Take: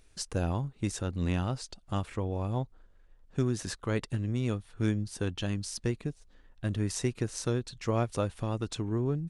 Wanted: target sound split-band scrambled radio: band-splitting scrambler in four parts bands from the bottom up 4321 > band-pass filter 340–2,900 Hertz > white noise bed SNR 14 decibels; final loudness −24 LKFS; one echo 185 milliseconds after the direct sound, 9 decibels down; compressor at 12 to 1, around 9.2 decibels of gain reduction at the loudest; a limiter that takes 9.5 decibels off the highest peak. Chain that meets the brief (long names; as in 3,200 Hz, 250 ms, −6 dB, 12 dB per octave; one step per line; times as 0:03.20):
downward compressor 12 to 1, threshold −33 dBFS
brickwall limiter −29.5 dBFS
single-tap delay 185 ms −9 dB
band-splitting scrambler in four parts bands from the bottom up 4321
band-pass filter 340–2,900 Hz
white noise bed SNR 14 dB
level +21.5 dB